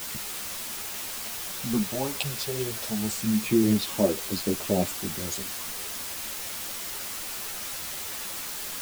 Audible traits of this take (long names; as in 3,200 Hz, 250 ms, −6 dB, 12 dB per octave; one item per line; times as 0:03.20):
phaser sweep stages 4, 0.3 Hz, lowest notch 240–2,100 Hz
a quantiser's noise floor 6 bits, dither triangular
a shimmering, thickened sound